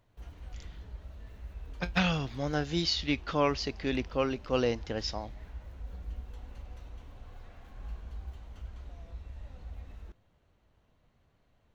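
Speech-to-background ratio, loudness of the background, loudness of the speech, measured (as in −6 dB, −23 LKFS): 16.0 dB, −47.0 LKFS, −31.0 LKFS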